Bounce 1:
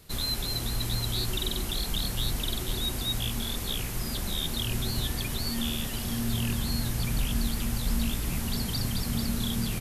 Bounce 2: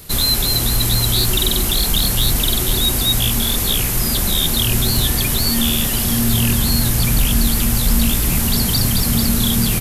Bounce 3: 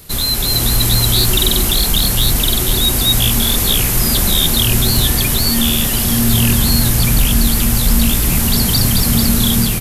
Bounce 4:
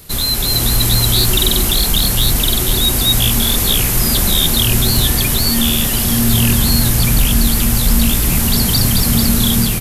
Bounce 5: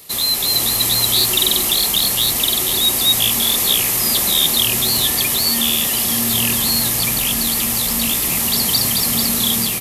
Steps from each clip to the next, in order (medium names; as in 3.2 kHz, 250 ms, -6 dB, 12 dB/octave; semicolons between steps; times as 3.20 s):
treble shelf 9.4 kHz +10 dB; in parallel at -4.5 dB: saturation -24.5 dBFS, distortion -15 dB; on the sum: trim +9 dB
level rider; trim -1 dB
no audible change
high-pass 550 Hz 6 dB/octave; band-stop 1.5 kHz, Q 5.8